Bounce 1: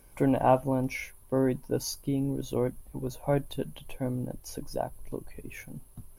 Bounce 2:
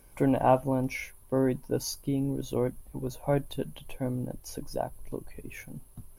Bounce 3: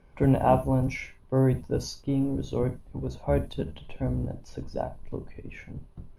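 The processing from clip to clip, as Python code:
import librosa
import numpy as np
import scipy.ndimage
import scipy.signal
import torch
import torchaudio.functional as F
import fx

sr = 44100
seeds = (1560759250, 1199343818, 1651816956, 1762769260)

y1 = x
y2 = fx.octave_divider(y1, sr, octaves=1, level_db=0.0)
y2 = fx.rev_gated(y2, sr, seeds[0], gate_ms=100, shape='flat', drr_db=10.5)
y2 = fx.env_lowpass(y2, sr, base_hz=2800.0, full_db=-18.5)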